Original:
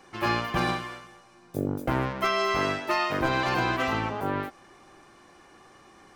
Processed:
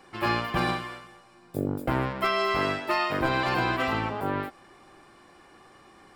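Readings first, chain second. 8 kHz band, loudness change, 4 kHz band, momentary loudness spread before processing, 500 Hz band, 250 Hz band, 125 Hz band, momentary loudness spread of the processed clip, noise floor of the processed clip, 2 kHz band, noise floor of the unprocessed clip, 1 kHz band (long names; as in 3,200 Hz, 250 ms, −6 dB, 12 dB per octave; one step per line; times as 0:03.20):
−4.5 dB, 0.0 dB, 0.0 dB, 8 LU, 0.0 dB, 0.0 dB, 0.0 dB, 8 LU, −55 dBFS, 0.0 dB, −55 dBFS, 0.0 dB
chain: notch filter 6,200 Hz, Q 5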